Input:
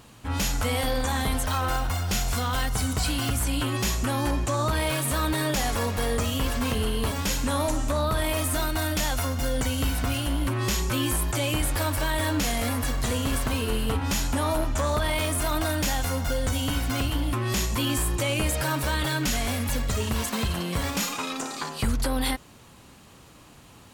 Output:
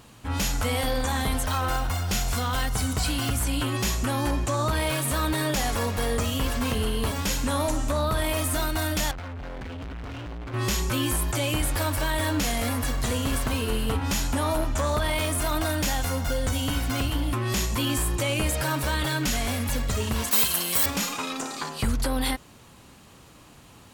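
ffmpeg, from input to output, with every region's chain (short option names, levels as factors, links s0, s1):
-filter_complex "[0:a]asettb=1/sr,asplit=3[s0][s1][s2];[s0]atrim=end=9.114[s3];[s1]atrim=start=9.11:end=10.54,asetpts=PTS-STARTPTS,afade=t=in:d=0.004:c=qsin,afade=t=out:st=1.426:d=0.004:c=qsin,lowpass=f=2400:w=0.5412,lowpass=f=2400:w=1.3066,asoftclip=type=hard:threshold=0.0188[s4];[s2]atrim=start=10.536[s5];[s3][s4]acrossfade=d=0.004:c1=hsin:c2=qsin[s6];[s6][s5]acrossfade=d=0.004:c1=qsin:c2=hsin,asettb=1/sr,asplit=3[s7][s8][s9];[s7]atrim=end=20.314[s10];[s8]atrim=start=20.31:end=20.86,asetpts=PTS-STARTPTS,afade=t=in:d=0.004:c=qsin,afade=t=out:st=0.546:d=0.004:c=qsin,aemphasis=mode=production:type=riaa,asoftclip=type=hard:threshold=0.266[s11];[s9]atrim=start=20.856[s12];[s10][s11]acrossfade=d=0.004:c1=hsin:c2=qsin[s13];[s13][s12]acrossfade=d=0.004:c1=qsin:c2=hsin"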